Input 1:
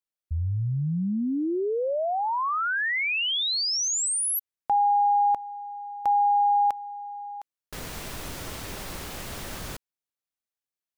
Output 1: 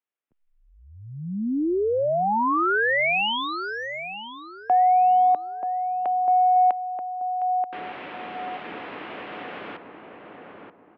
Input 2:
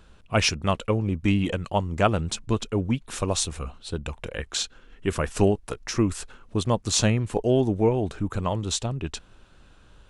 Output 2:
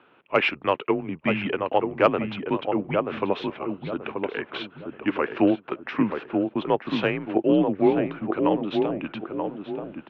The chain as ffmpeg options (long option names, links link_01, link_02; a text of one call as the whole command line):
ffmpeg -i in.wav -filter_complex "[0:a]asplit=2[link_01][link_02];[link_02]adelay=932,lowpass=frequency=1100:poles=1,volume=-4dB,asplit=2[link_03][link_04];[link_04]adelay=932,lowpass=frequency=1100:poles=1,volume=0.38,asplit=2[link_05][link_06];[link_06]adelay=932,lowpass=frequency=1100:poles=1,volume=0.38,asplit=2[link_07][link_08];[link_08]adelay=932,lowpass=frequency=1100:poles=1,volume=0.38,asplit=2[link_09][link_10];[link_10]adelay=932,lowpass=frequency=1100:poles=1,volume=0.38[link_11];[link_01][link_03][link_05][link_07][link_09][link_11]amix=inputs=6:normalize=0,highpass=frequency=320:width_type=q:width=0.5412,highpass=frequency=320:width_type=q:width=1.307,lowpass=frequency=3000:width_type=q:width=0.5176,lowpass=frequency=3000:width_type=q:width=0.7071,lowpass=frequency=3000:width_type=q:width=1.932,afreqshift=-83,acontrast=31,volume=-1.5dB" out.wav